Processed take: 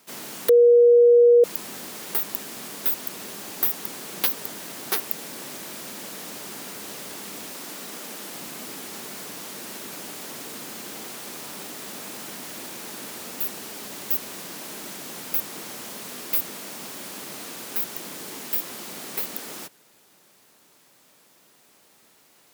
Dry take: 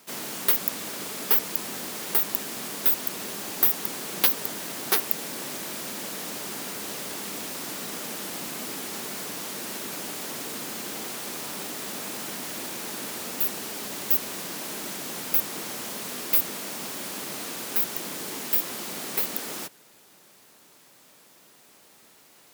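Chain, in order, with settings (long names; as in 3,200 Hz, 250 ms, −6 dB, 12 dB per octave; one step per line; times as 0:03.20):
0:00.49–0:01.44: beep over 478 Hz −8 dBFS
0:07.51–0:08.36: high-pass filter 170 Hz 12 dB per octave
level −2.5 dB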